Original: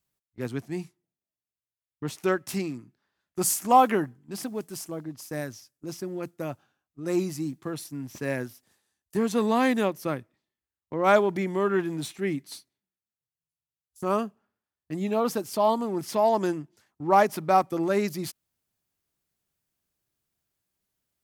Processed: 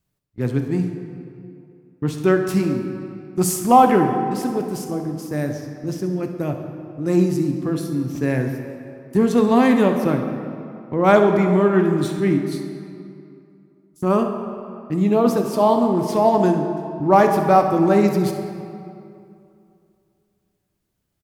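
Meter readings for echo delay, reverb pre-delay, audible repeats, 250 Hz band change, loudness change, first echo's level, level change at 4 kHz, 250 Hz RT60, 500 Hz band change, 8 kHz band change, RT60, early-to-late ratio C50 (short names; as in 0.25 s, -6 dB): 67 ms, 3 ms, 1, +11.0 dB, +8.0 dB, -14.0 dB, +3.0 dB, 2.6 s, +8.0 dB, +1.5 dB, 2.6 s, 6.0 dB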